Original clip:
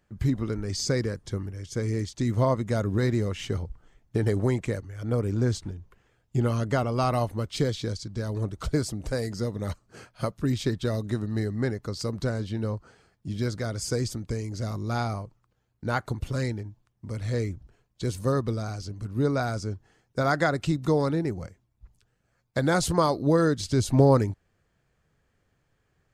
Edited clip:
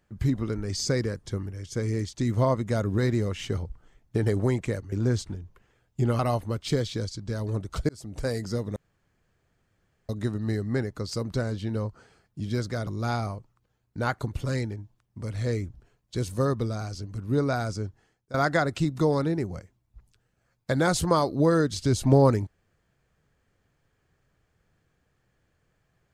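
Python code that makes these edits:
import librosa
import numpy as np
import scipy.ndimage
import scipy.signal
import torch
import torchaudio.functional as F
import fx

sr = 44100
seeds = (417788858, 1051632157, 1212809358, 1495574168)

y = fx.edit(x, sr, fx.cut(start_s=4.92, length_s=0.36),
    fx.cut(start_s=6.55, length_s=0.52),
    fx.fade_in_span(start_s=8.77, length_s=0.35),
    fx.room_tone_fill(start_s=9.64, length_s=1.33),
    fx.cut(start_s=13.75, length_s=0.99),
    fx.fade_out_to(start_s=19.74, length_s=0.47, floor_db=-19.5), tone=tone)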